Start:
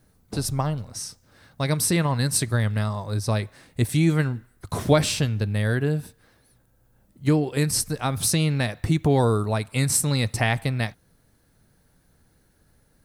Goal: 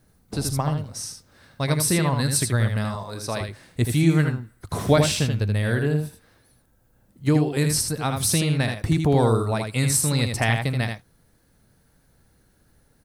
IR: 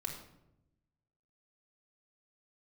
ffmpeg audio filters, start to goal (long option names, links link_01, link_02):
-filter_complex "[0:a]asettb=1/sr,asplit=3[link_01][link_02][link_03];[link_01]atrim=end=2.954[link_04];[link_02]atrim=start=2.95:end=3.41,asetpts=PTS-STARTPTS,afade=type=in:duration=0.004:curve=qsin,afade=type=out:start_time=0.456:duration=0.004:curve=qsin,highpass=frequency=410:poles=1[link_05];[link_03]atrim=start=3.406[link_06];[link_04][link_05]acrossfade=duration=0.004:curve1=hsin:curve2=qsin[link_07];[link_07][link_06]acrossfade=duration=0.004:curve1=qsin:curve2=hsin,asplit=2[link_08][link_09];[link_09]aecho=0:1:79:0.531[link_10];[link_08][link_10]amix=inputs=2:normalize=0"